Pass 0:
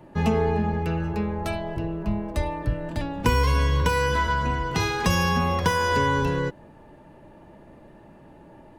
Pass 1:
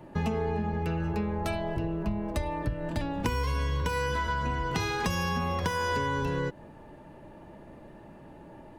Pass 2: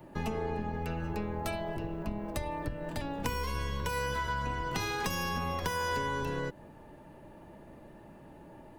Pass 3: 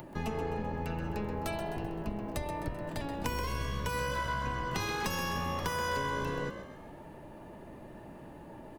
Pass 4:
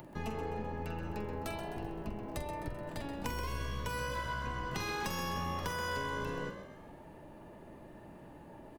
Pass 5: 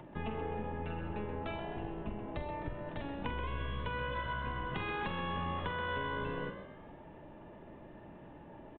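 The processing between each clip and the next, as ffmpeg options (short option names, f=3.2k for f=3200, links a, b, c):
-af "acompressor=threshold=-26dB:ratio=6"
-filter_complex "[0:a]highshelf=f=11k:g=11.5,acrossover=split=460|1800[a][b][c];[a]aeval=exprs='clip(val(0),-1,0.0106)':c=same[d];[d][b][c]amix=inputs=3:normalize=0,volume=-3dB"
-filter_complex "[0:a]acompressor=mode=upward:threshold=-41dB:ratio=2.5,asplit=2[a][b];[b]asplit=5[c][d][e][f][g];[c]adelay=129,afreqshift=57,volume=-9.5dB[h];[d]adelay=258,afreqshift=114,volume=-15.7dB[i];[e]adelay=387,afreqshift=171,volume=-21.9dB[j];[f]adelay=516,afreqshift=228,volume=-28.1dB[k];[g]adelay=645,afreqshift=285,volume=-34.3dB[l];[h][i][j][k][l]amix=inputs=5:normalize=0[m];[a][m]amix=inputs=2:normalize=0,volume=-1dB"
-filter_complex "[0:a]asplit=2[a][b];[b]adelay=46,volume=-10dB[c];[a][c]amix=inputs=2:normalize=0,volume=-4dB"
-af "aresample=8000,aresample=44100"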